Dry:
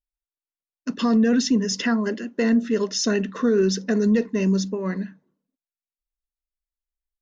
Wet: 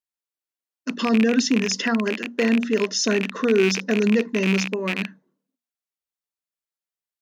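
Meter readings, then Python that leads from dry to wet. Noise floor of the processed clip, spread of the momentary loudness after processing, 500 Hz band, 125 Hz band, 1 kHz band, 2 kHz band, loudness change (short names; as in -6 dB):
under -85 dBFS, 8 LU, +1.5 dB, n/a, +2.0 dB, +6.0 dB, +0.5 dB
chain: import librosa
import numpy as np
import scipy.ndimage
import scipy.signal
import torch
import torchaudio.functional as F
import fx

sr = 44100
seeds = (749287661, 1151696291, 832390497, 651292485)

y = fx.rattle_buzz(x, sr, strikes_db=-32.0, level_db=-15.0)
y = scipy.signal.sosfilt(scipy.signal.butter(2, 180.0, 'highpass', fs=sr, output='sos'), y)
y = fx.hum_notches(y, sr, base_hz=60, count=4)
y = F.gain(torch.from_numpy(y), 1.5).numpy()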